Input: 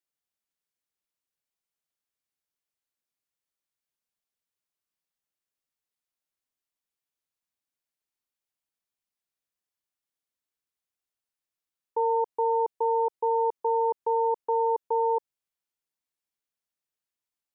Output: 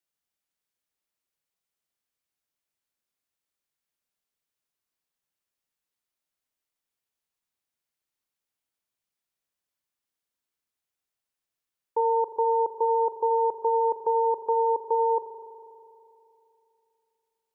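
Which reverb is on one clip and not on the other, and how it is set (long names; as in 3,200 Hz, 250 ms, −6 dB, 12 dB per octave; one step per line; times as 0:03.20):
spring reverb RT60 2.9 s, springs 40 ms, chirp 60 ms, DRR 7.5 dB
level +2 dB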